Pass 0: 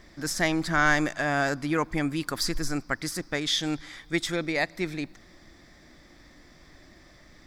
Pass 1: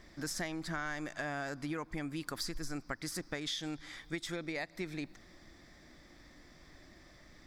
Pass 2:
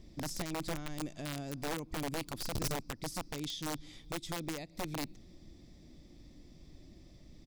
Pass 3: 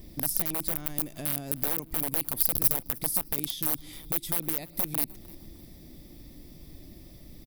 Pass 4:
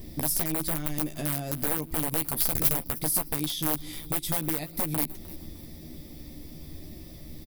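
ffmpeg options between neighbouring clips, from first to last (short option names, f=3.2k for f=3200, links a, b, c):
-af "acompressor=threshold=-30dB:ratio=12,volume=-4.5dB"
-filter_complex "[0:a]firequalizer=gain_entry='entry(160,0);entry(470,-7);entry(690,-12);entry(1600,-25);entry(2600,-9)':delay=0.05:min_phase=1,asplit=2[a][b];[b]acrusher=bits=4:mix=0:aa=0.000001,volume=-4.5dB[c];[a][c]amix=inputs=2:normalize=0,aeval=exprs='(mod(63.1*val(0)+1,2)-1)/63.1':c=same,volume=5.5dB"
-filter_complex "[0:a]acompressor=threshold=-41dB:ratio=6,aexciter=amount=12:drive=3.6:freq=9.6k,asplit=3[a][b][c];[b]adelay=305,afreqshift=31,volume=-23dB[d];[c]adelay=610,afreqshift=62,volume=-32.1dB[e];[a][d][e]amix=inputs=3:normalize=0,volume=7dB"
-filter_complex "[0:a]asoftclip=type=tanh:threshold=-19dB,asplit=2[a][b];[b]adelay=13,volume=-5.5dB[c];[a][c]amix=inputs=2:normalize=0,volume=4dB"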